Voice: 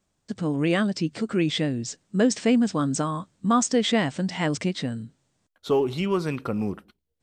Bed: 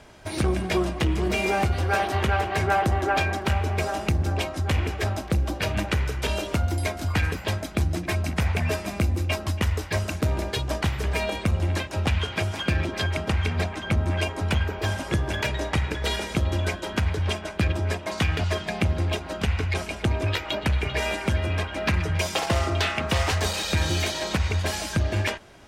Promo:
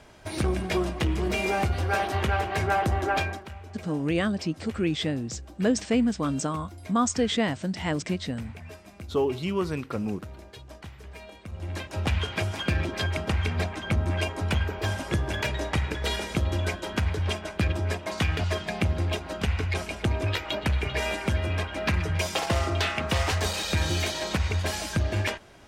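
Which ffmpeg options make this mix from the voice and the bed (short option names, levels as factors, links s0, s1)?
-filter_complex "[0:a]adelay=3450,volume=0.708[s0];[1:a]volume=4.73,afade=t=out:st=3.17:d=0.31:silence=0.16788,afade=t=in:st=11.47:d=0.66:silence=0.158489[s1];[s0][s1]amix=inputs=2:normalize=0"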